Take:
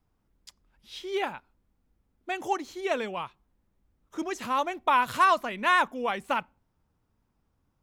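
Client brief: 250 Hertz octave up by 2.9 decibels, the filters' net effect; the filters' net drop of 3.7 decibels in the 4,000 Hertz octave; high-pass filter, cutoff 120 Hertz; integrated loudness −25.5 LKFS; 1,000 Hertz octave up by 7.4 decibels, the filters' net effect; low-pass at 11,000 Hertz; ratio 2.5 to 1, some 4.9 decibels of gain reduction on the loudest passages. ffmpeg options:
ffmpeg -i in.wav -af "highpass=120,lowpass=11000,equalizer=frequency=250:width_type=o:gain=3.5,equalizer=frequency=1000:width_type=o:gain=8.5,equalizer=frequency=4000:width_type=o:gain=-6,acompressor=threshold=-18dB:ratio=2.5,volume=-0.5dB" out.wav

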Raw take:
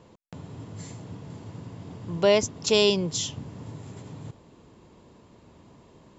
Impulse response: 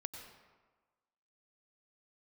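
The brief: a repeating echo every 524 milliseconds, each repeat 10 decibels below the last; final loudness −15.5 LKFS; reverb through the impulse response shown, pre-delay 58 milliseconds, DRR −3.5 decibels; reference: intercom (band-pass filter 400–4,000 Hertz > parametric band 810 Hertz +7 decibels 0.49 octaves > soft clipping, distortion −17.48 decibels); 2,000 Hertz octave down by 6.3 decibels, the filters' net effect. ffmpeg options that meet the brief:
-filter_complex "[0:a]equalizer=frequency=2000:width_type=o:gain=-8.5,aecho=1:1:524|1048|1572|2096:0.316|0.101|0.0324|0.0104,asplit=2[link_01][link_02];[1:a]atrim=start_sample=2205,adelay=58[link_03];[link_02][link_03]afir=irnorm=-1:irlink=0,volume=5.5dB[link_04];[link_01][link_04]amix=inputs=2:normalize=0,highpass=400,lowpass=4000,equalizer=frequency=810:width_type=o:width=0.49:gain=7,asoftclip=threshold=-10.5dB,volume=7.5dB"

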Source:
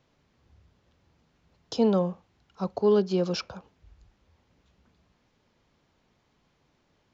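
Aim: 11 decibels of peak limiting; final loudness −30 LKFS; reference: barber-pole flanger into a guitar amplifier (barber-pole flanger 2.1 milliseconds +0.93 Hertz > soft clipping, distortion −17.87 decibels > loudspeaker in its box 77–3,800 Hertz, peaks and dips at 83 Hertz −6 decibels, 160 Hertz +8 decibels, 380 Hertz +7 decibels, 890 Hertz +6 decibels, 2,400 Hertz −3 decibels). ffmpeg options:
ffmpeg -i in.wav -filter_complex "[0:a]alimiter=limit=-23dB:level=0:latency=1,asplit=2[link_01][link_02];[link_02]adelay=2.1,afreqshift=0.93[link_03];[link_01][link_03]amix=inputs=2:normalize=1,asoftclip=threshold=-27.5dB,highpass=77,equalizer=frequency=83:width_type=q:width=4:gain=-6,equalizer=frequency=160:width_type=q:width=4:gain=8,equalizer=frequency=380:width_type=q:width=4:gain=7,equalizer=frequency=890:width_type=q:width=4:gain=6,equalizer=frequency=2400:width_type=q:width=4:gain=-3,lowpass=frequency=3800:width=0.5412,lowpass=frequency=3800:width=1.3066,volume=4dB" out.wav

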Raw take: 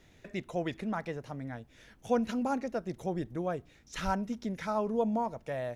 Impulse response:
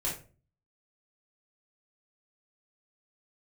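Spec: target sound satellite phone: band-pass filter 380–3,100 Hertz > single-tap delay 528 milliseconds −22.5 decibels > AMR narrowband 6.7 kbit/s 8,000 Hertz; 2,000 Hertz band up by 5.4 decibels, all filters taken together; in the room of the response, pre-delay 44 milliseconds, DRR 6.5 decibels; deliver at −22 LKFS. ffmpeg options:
-filter_complex "[0:a]equalizer=frequency=2000:width_type=o:gain=7.5,asplit=2[link_01][link_02];[1:a]atrim=start_sample=2205,adelay=44[link_03];[link_02][link_03]afir=irnorm=-1:irlink=0,volume=-11dB[link_04];[link_01][link_04]amix=inputs=2:normalize=0,highpass=380,lowpass=3100,aecho=1:1:528:0.075,volume=14dB" -ar 8000 -c:a libopencore_amrnb -b:a 6700

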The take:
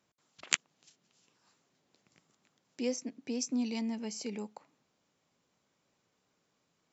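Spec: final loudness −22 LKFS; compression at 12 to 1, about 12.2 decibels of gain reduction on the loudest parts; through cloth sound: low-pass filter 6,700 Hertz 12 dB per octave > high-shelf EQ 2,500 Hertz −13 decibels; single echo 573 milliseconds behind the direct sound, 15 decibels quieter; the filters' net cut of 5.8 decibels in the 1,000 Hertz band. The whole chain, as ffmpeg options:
ffmpeg -i in.wav -af "equalizer=frequency=1000:width_type=o:gain=-5.5,acompressor=threshold=-34dB:ratio=12,lowpass=6700,highshelf=frequency=2500:gain=-13,aecho=1:1:573:0.178,volume=20dB" out.wav

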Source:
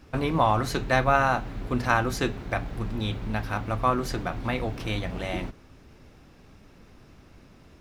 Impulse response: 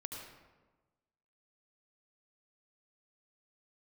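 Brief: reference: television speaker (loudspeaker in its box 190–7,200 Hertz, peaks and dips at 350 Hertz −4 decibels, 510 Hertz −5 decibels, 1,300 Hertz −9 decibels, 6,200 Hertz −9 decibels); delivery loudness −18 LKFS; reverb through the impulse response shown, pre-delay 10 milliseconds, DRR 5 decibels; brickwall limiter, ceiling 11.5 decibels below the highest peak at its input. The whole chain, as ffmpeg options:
-filter_complex "[0:a]alimiter=limit=-17dB:level=0:latency=1,asplit=2[link_01][link_02];[1:a]atrim=start_sample=2205,adelay=10[link_03];[link_02][link_03]afir=irnorm=-1:irlink=0,volume=-3.5dB[link_04];[link_01][link_04]amix=inputs=2:normalize=0,highpass=frequency=190:width=0.5412,highpass=frequency=190:width=1.3066,equalizer=frequency=350:width_type=q:width=4:gain=-4,equalizer=frequency=510:width_type=q:width=4:gain=-5,equalizer=frequency=1300:width_type=q:width=4:gain=-9,equalizer=frequency=6200:width_type=q:width=4:gain=-9,lowpass=frequency=7200:width=0.5412,lowpass=frequency=7200:width=1.3066,volume=14.5dB"

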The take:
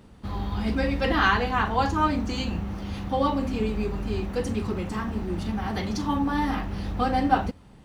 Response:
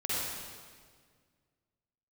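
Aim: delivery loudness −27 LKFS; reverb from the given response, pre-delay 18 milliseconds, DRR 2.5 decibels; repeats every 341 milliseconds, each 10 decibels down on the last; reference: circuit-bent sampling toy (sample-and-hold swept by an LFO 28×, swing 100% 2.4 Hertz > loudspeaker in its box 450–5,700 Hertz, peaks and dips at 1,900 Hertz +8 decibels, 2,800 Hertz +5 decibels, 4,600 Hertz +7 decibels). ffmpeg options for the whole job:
-filter_complex "[0:a]aecho=1:1:341|682|1023|1364:0.316|0.101|0.0324|0.0104,asplit=2[link_01][link_02];[1:a]atrim=start_sample=2205,adelay=18[link_03];[link_02][link_03]afir=irnorm=-1:irlink=0,volume=-9.5dB[link_04];[link_01][link_04]amix=inputs=2:normalize=0,acrusher=samples=28:mix=1:aa=0.000001:lfo=1:lforange=28:lforate=2.4,highpass=450,equalizer=frequency=1900:width_type=q:width=4:gain=8,equalizer=frequency=2800:width_type=q:width=4:gain=5,equalizer=frequency=4600:width_type=q:width=4:gain=7,lowpass=frequency=5700:width=0.5412,lowpass=frequency=5700:width=1.3066,volume=-1.5dB"

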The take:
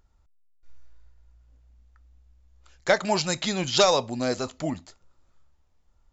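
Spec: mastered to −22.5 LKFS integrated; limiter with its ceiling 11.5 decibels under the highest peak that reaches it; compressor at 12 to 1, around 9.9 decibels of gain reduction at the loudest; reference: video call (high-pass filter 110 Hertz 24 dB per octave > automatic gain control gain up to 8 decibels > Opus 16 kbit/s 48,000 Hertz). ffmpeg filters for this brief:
ffmpeg -i in.wav -af "acompressor=threshold=-24dB:ratio=12,alimiter=limit=-24dB:level=0:latency=1,highpass=frequency=110:width=0.5412,highpass=frequency=110:width=1.3066,dynaudnorm=maxgain=8dB,volume=13dB" -ar 48000 -c:a libopus -b:a 16k out.opus

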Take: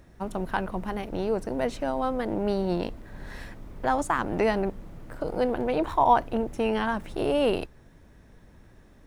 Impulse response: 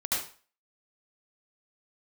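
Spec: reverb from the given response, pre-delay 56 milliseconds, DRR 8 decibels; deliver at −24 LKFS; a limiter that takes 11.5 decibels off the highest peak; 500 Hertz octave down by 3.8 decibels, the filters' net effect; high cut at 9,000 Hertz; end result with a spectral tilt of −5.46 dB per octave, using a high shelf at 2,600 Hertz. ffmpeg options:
-filter_complex "[0:a]lowpass=9000,equalizer=frequency=500:width_type=o:gain=-4.5,highshelf=frequency=2600:gain=-4.5,alimiter=limit=-22.5dB:level=0:latency=1,asplit=2[link_01][link_02];[1:a]atrim=start_sample=2205,adelay=56[link_03];[link_02][link_03]afir=irnorm=-1:irlink=0,volume=-15.5dB[link_04];[link_01][link_04]amix=inputs=2:normalize=0,volume=9.5dB"

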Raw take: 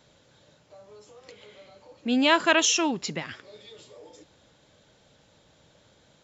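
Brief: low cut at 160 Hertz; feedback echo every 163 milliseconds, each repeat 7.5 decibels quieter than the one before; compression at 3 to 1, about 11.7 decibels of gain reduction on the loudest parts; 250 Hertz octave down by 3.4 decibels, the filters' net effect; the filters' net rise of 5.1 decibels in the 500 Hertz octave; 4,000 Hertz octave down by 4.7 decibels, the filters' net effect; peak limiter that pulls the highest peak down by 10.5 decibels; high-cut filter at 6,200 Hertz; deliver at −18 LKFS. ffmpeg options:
ffmpeg -i in.wav -af "highpass=160,lowpass=6200,equalizer=frequency=250:width_type=o:gain=-7,equalizer=frequency=500:width_type=o:gain=9,equalizer=frequency=4000:width_type=o:gain=-6.5,acompressor=threshold=-30dB:ratio=3,alimiter=level_in=3.5dB:limit=-24dB:level=0:latency=1,volume=-3.5dB,aecho=1:1:163|326|489|652|815:0.422|0.177|0.0744|0.0312|0.0131,volume=21.5dB" out.wav

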